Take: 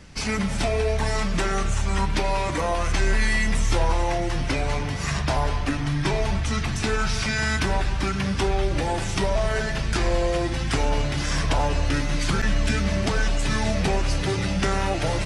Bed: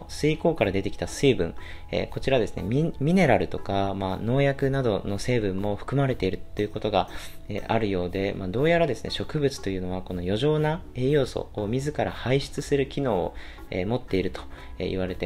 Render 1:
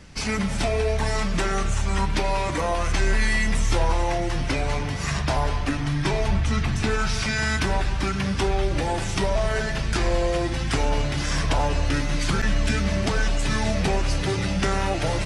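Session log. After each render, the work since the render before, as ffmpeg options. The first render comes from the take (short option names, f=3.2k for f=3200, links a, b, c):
-filter_complex "[0:a]asettb=1/sr,asplit=3[a][b][c];[a]atrim=end=6.284[d];[b]atrim=start=6.28:end=6.91,asetpts=PTS-STARTPTS,afade=t=in:d=0.004:c=qsin,afade=t=out:st=0.626:d=0.004:c=qsin,bass=f=250:g=3,treble=f=4k:g=-4[e];[c]atrim=start=6.906[f];[d][e]acrossfade=d=0.004:c1=hsin:c2=qsin[g];[g][f]acrossfade=d=0.004:c1=qsin:c2=hsin"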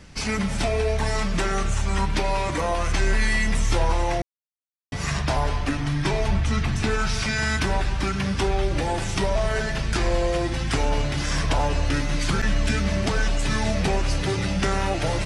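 -filter_complex "[0:a]asplit=3[a][b][c];[a]atrim=end=4.22,asetpts=PTS-STARTPTS,afade=t=out:st=4.216:d=0.004:c=hsin[d];[b]atrim=start=4.22:end=4.92,asetpts=PTS-STARTPTS,volume=0[e];[c]atrim=start=4.92,asetpts=PTS-STARTPTS,afade=t=in:d=0.004:c=hsin[f];[d][e][f]concat=n=3:v=0:a=1"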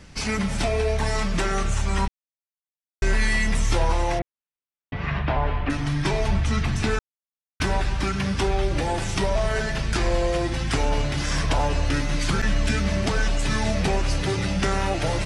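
-filter_complex "[0:a]asettb=1/sr,asplit=3[a][b][c];[a]atrim=end=4.194[d];[b]atrim=start=4.19:end=5.7,asetpts=PTS-STARTPTS,afade=t=in:d=0.004:c=qsin,afade=t=out:st=1.506:d=0.004:c=qsin,lowpass=f=3k:w=0.5412,lowpass=f=3k:w=1.3066[e];[c]atrim=start=5.696[f];[d][e]acrossfade=d=0.004:c1=hsin:c2=qsin[g];[g][f]acrossfade=d=0.004:c1=qsin:c2=hsin,asplit=5[h][i][j][k][l];[h]atrim=end=2.08,asetpts=PTS-STARTPTS,afade=t=out:st=2.076:d=0.004:c=hsin[m];[i]atrim=start=2.08:end=3.02,asetpts=PTS-STARTPTS,volume=0[n];[j]atrim=start=3.02:end=6.99,asetpts=PTS-STARTPTS,afade=t=in:d=0.004:c=hsin,afade=t=out:st=3.966:d=0.004:c=hsin[o];[k]atrim=start=6.99:end=7.6,asetpts=PTS-STARTPTS,volume=0[p];[l]atrim=start=7.6,asetpts=PTS-STARTPTS,afade=t=in:d=0.004:c=hsin[q];[m][n][o][p][q]concat=n=5:v=0:a=1"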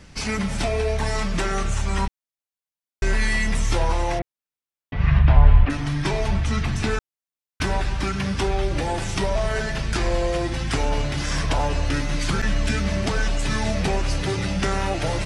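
-filter_complex "[0:a]asplit=3[a][b][c];[a]afade=t=out:st=4.96:d=0.02[d];[b]asubboost=boost=5.5:cutoff=140,afade=t=in:st=4.96:d=0.02,afade=t=out:st=5.64:d=0.02[e];[c]afade=t=in:st=5.64:d=0.02[f];[d][e][f]amix=inputs=3:normalize=0"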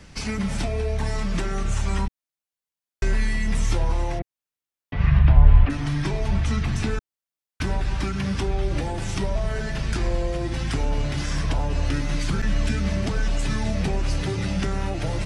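-filter_complex "[0:a]acrossover=split=330[a][b];[b]acompressor=threshold=-31dB:ratio=6[c];[a][c]amix=inputs=2:normalize=0"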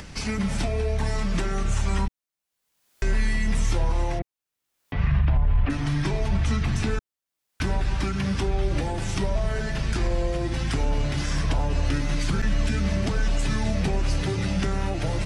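-af "alimiter=limit=-14dB:level=0:latency=1:release=39,acompressor=mode=upward:threshold=-34dB:ratio=2.5"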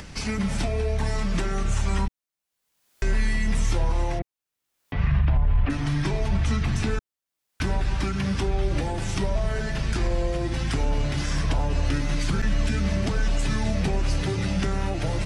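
-af anull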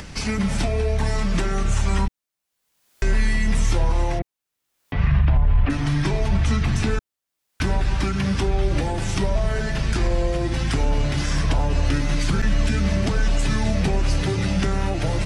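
-af "volume=3.5dB"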